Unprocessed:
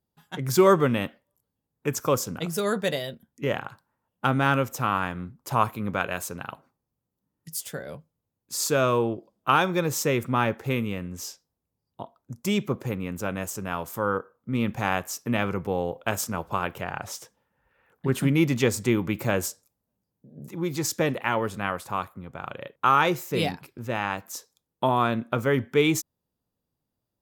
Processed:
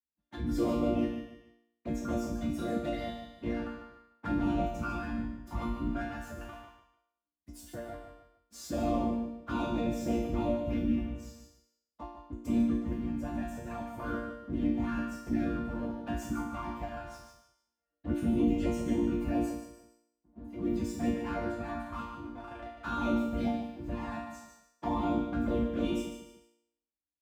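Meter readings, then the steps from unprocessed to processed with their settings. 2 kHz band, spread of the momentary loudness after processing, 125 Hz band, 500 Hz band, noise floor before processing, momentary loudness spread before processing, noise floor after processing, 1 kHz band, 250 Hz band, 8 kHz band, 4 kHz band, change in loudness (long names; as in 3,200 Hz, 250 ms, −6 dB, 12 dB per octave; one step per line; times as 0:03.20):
−15.0 dB, 15 LU, −9.5 dB, −10.0 dB, −84 dBFS, 16 LU, below −85 dBFS, −12.0 dB, −2.0 dB, −19.0 dB, −15.0 dB, −7.5 dB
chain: leveller curve on the samples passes 3
random phases in short frames
parametric band 380 Hz −13.5 dB 0.21 octaves
flanger swept by the level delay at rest 7.4 ms, full sweep at −12 dBFS
spectral tilt −3.5 dB per octave
leveller curve on the samples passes 1
on a send: repeating echo 148 ms, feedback 28%, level −9 dB
on the sum: frequency shifter +42 Hz
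resonators tuned to a chord A#3 major, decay 0.69 s
in parallel at −1.5 dB: downward compressor, threshold −50 dBFS, peak gain reduction 24.5 dB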